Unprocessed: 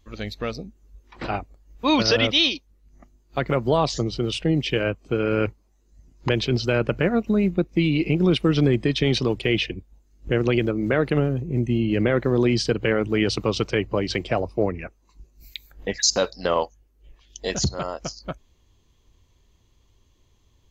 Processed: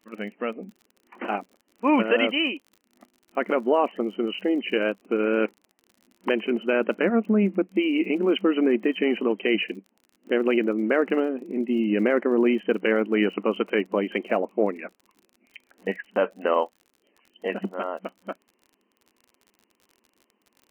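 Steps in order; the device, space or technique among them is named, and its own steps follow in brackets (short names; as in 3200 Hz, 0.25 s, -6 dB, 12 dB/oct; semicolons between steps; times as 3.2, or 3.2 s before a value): FFT band-pass 190–3100 Hz; lo-fi chain (LPF 3500 Hz; wow and flutter 35 cents; crackle 46/s -41 dBFS)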